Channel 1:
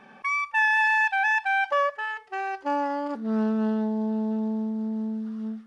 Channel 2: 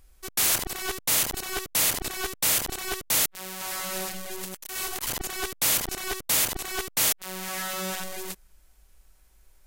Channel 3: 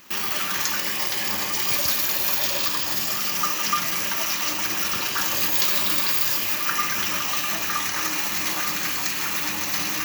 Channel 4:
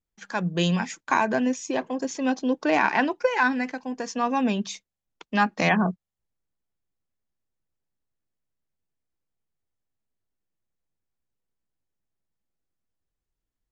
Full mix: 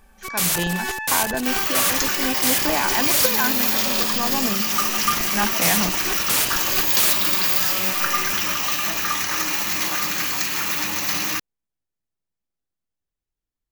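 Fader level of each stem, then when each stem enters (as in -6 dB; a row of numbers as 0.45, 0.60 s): -8.5, +1.5, +2.0, -2.5 dB; 0.00, 0.00, 1.35, 0.00 s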